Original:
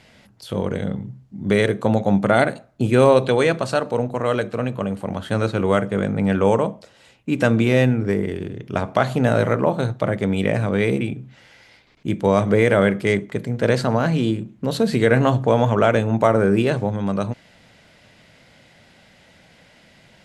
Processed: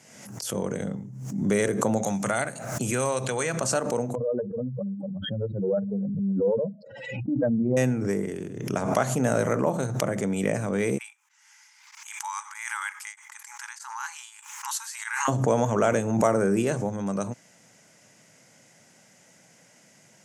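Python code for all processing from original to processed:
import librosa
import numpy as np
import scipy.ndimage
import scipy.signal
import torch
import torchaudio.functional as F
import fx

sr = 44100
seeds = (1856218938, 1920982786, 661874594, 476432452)

y = fx.chain(x, sr, fx.peak_eq(hz=320.0, db=-10.0, octaves=2.4),
    fx.band_squash(depth_pct=70), at=(2.03, 3.61))
y = fx.chain(y, sr, fx.spec_expand(power=3.8),
    fx.doppler_dist(depth_ms=0.14), at=(4.15, 7.77))
y = fx.chain(y, sr, fx.brickwall_highpass(low_hz=810.0),
    fx.tremolo_abs(hz=1.6), at=(10.98, 15.28))
y = scipy.signal.sosfilt(scipy.signal.butter(4, 120.0, 'highpass', fs=sr, output='sos'), y)
y = fx.high_shelf_res(y, sr, hz=5000.0, db=8.5, q=3.0)
y = fx.pre_swell(y, sr, db_per_s=51.0)
y = y * librosa.db_to_amplitude(-6.0)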